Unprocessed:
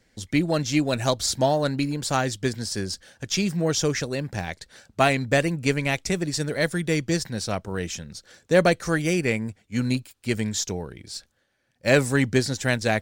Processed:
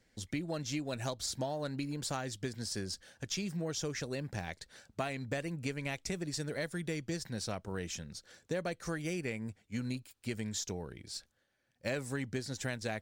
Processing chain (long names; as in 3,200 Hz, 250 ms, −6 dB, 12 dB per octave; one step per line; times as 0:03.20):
downward compressor 5 to 1, threshold −27 dBFS, peak gain reduction 13 dB
level −7 dB